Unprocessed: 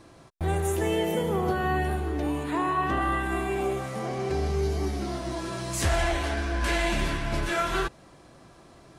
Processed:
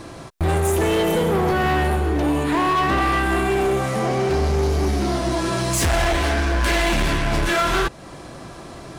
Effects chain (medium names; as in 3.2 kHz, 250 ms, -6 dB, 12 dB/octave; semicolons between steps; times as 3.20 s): in parallel at +1.5 dB: compression, threshold -39 dBFS, peak gain reduction 17 dB; on the sum: hard clipper -24 dBFS, distortion -11 dB; trim +8 dB